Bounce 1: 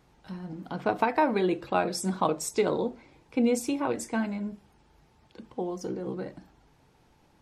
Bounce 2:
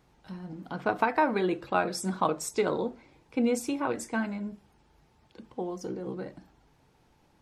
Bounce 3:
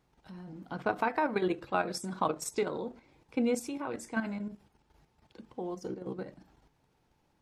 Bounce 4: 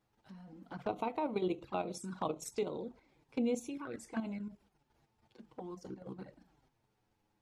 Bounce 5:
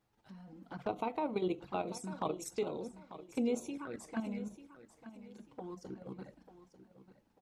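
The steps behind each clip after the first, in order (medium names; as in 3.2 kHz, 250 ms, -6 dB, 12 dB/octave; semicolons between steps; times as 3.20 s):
dynamic bell 1.4 kHz, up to +5 dB, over -45 dBFS, Q 1.7; trim -2 dB
level held to a coarse grid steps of 9 dB
touch-sensitive flanger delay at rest 9.9 ms, full sweep at -30.5 dBFS; trim -3.5 dB
feedback delay 893 ms, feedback 30%, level -14 dB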